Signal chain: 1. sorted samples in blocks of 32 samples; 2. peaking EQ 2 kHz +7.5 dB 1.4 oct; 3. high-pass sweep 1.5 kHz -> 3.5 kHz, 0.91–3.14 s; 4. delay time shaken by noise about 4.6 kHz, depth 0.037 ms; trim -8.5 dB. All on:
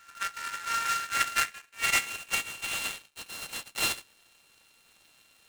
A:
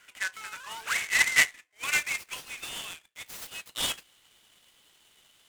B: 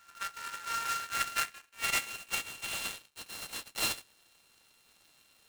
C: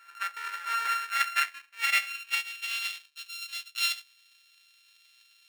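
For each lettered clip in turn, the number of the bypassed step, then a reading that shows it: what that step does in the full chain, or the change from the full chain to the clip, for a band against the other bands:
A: 1, 1 kHz band -7.5 dB; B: 2, 2 kHz band -2.5 dB; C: 4, 8 kHz band -7.0 dB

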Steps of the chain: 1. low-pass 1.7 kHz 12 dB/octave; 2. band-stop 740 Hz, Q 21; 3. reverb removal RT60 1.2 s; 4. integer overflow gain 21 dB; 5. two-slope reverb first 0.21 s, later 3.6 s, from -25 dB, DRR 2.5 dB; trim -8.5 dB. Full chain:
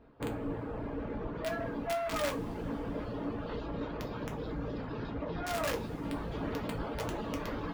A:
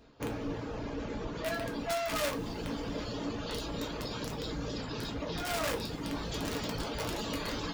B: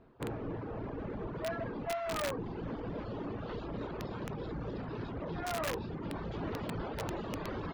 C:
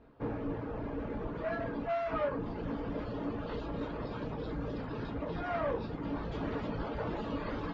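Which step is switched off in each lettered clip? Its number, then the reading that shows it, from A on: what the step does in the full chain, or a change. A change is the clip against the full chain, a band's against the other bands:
1, 4 kHz band +8.0 dB; 5, crest factor change -5.5 dB; 4, distortion -11 dB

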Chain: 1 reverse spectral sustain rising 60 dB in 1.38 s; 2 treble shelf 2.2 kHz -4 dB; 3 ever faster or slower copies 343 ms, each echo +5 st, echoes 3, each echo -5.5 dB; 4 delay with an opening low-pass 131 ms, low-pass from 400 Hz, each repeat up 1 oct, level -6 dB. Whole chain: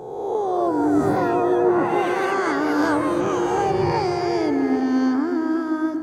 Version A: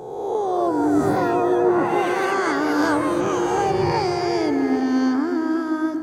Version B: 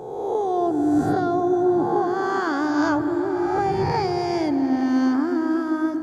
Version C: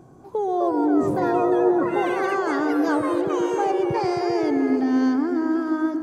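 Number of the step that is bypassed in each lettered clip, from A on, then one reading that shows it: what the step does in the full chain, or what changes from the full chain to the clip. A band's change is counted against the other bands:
2, 8 kHz band +3.0 dB; 3, 250 Hz band +1.5 dB; 1, 125 Hz band -3.5 dB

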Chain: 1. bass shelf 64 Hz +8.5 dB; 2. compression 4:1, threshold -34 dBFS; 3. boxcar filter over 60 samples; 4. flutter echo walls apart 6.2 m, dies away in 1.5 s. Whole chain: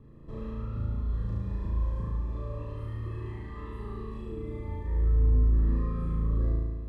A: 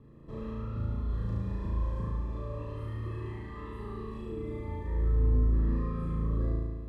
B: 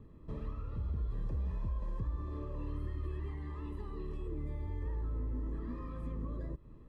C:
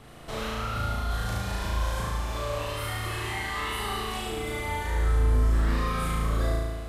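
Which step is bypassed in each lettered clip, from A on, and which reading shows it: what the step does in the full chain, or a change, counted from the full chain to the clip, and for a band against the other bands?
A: 1, 125 Hz band -3.0 dB; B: 4, echo-to-direct 4.0 dB to none; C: 3, 2 kHz band +17.0 dB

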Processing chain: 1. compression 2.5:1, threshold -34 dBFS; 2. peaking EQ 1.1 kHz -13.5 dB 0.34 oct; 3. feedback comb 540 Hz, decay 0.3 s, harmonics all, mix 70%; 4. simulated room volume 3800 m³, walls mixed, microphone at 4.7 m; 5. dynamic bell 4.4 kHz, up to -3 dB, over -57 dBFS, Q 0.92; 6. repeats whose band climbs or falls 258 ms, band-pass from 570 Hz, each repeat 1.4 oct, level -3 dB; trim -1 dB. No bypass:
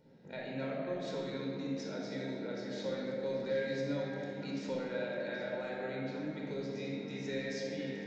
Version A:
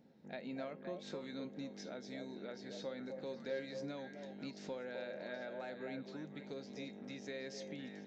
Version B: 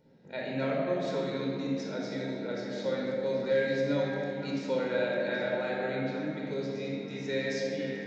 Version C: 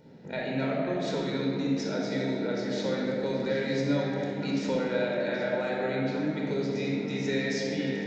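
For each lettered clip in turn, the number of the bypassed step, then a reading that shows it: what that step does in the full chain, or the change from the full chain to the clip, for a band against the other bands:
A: 4, crest factor change +1.5 dB; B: 1, mean gain reduction 4.5 dB; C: 3, 500 Hz band -2.0 dB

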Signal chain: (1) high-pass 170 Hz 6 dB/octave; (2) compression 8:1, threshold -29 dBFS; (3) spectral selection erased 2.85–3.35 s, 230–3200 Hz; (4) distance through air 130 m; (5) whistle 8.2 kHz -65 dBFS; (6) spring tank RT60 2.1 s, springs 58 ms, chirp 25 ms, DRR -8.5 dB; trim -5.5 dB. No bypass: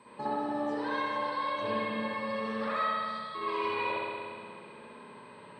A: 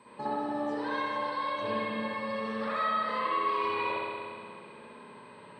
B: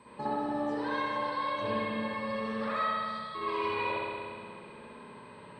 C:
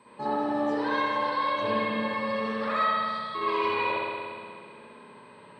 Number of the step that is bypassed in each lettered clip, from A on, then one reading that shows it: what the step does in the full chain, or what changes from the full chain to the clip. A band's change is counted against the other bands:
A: 3, momentary loudness spread change +2 LU; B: 1, 125 Hz band +3.5 dB; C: 2, mean gain reduction 3.5 dB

